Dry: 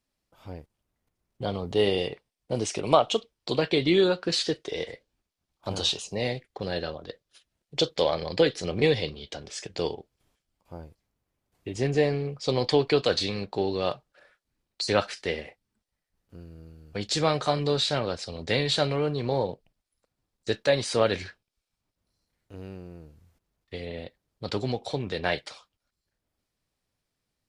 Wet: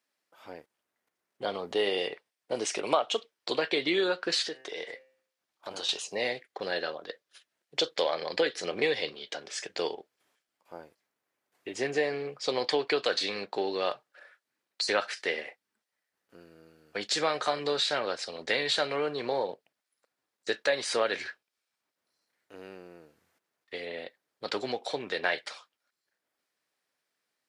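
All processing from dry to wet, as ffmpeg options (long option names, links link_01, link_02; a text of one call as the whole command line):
ffmpeg -i in.wav -filter_complex "[0:a]asettb=1/sr,asplit=3[link_01][link_02][link_03];[link_01]atrim=end=4.484[link_04];[link_02]atrim=start=4.48:end=5.89,asetpts=PTS-STARTPTS,afade=type=in:duration=0.004:curve=qsin,afade=type=out:start_time=1.406:duration=0.004:curve=qsin,bandreject=frequency=130.8:width_type=h:width=4,bandreject=frequency=261.6:width_type=h:width=4,bandreject=frequency=392.4:width_type=h:width=4,bandreject=frequency=523.2:width_type=h:width=4,bandreject=frequency=654:width_type=h:width=4,bandreject=frequency=784.8:width_type=h:width=4,bandreject=frequency=915.6:width_type=h:width=4,bandreject=frequency=1046.4:width_type=h:width=4,bandreject=frequency=1177.2:width_type=h:width=4,bandreject=frequency=1308:width_type=h:width=4,bandreject=frequency=1438.8:width_type=h:width=4,bandreject=frequency=1569.6:width_type=h:width=4,bandreject=frequency=1700.4:width_type=h:width=4,bandreject=frequency=1831.2:width_type=h:width=4,bandreject=frequency=1962:width_type=h:width=4,bandreject=frequency=2092.8:width_type=h:width=4,bandreject=frequency=2223.6:width_type=h:width=4,bandreject=frequency=2354.4:width_type=h:width=4,bandreject=frequency=2485.2:width_type=h:width=4,bandreject=frequency=2616:width_type=h:width=4,bandreject=frequency=2746.8:width_type=h:width=4,bandreject=frequency=2877.6:width_type=h:width=4,acompressor=threshold=-37dB:ratio=2:attack=3.2:release=140:knee=1:detection=peak[link_05];[link_03]atrim=start=5.886[link_06];[link_04][link_05]acrossfade=duration=0.004:curve1=hsin:curve2=qsin[link_07];[link_07][link_06]acrossfade=duration=0.004:curve1=qsin:curve2=hsin,highpass=370,equalizer=frequency=1700:width_type=o:width=0.92:gain=6,acompressor=threshold=-26dB:ratio=2" out.wav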